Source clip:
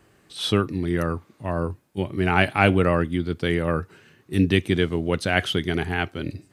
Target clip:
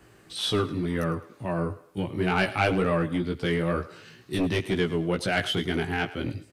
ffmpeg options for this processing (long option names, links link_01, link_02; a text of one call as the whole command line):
ffmpeg -i in.wav -filter_complex "[0:a]asettb=1/sr,asplit=3[link_01][link_02][link_03];[link_01]atrim=end=3.664[link_04];[link_02]atrim=start=3.66:end=4.39,asetpts=PTS-STARTPTS,afade=type=in:duration=0.004:curve=qsin,afade=type=out:start_time=0.726:duration=0.004:curve=qsin,equalizer=frequency=4500:width_type=o:width=0.92:gain=9.5[link_05];[link_03]atrim=start=4.386[link_06];[link_04][link_05]acrossfade=duration=0.004:curve1=hsin:curve2=qsin[link_07];[link_07][link_06]acrossfade=duration=0.004:curve1=qsin:curve2=hsin,asplit=2[link_08][link_09];[link_09]acompressor=threshold=-36dB:ratio=6,volume=0dB[link_10];[link_08][link_10]amix=inputs=2:normalize=0,asoftclip=type=tanh:threshold=-10dB,flanger=delay=15.5:depth=3.4:speed=2.1,acrossover=split=290[link_11][link_12];[link_11]aeval=exprs='0.0596*(abs(mod(val(0)/0.0596+3,4)-2)-1)':channel_layout=same[link_13];[link_12]aecho=1:1:106|212|318:0.158|0.0571|0.0205[link_14];[link_13][link_14]amix=inputs=2:normalize=0" out.wav